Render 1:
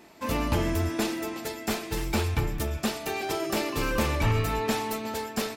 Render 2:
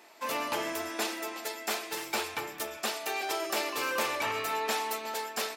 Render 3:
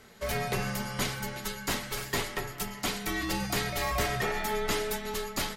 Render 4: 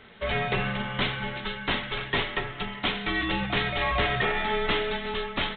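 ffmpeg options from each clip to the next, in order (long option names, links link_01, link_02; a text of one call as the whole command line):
ffmpeg -i in.wav -af "highpass=560" out.wav
ffmpeg -i in.wav -af "afreqshift=-460,volume=1.5dB" out.wav
ffmpeg -i in.wav -af "highshelf=frequency=2700:gain=9.5,volume=3dB" -ar 8000 -c:a adpcm_g726 -b:a 40k out.wav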